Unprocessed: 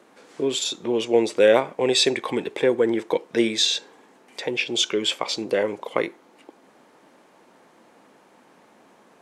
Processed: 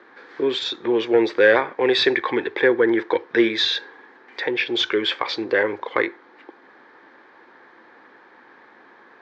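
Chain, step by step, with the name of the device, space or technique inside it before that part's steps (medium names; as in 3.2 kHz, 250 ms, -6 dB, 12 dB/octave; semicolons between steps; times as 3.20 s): overdrive pedal into a guitar cabinet (overdrive pedal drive 12 dB, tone 3.4 kHz, clips at -3.5 dBFS; cabinet simulation 86–4300 Hz, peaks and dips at 100 Hz +9 dB, 180 Hz -7 dB, 350 Hz +4 dB, 640 Hz -8 dB, 1.7 kHz +9 dB, 2.8 kHz -8 dB)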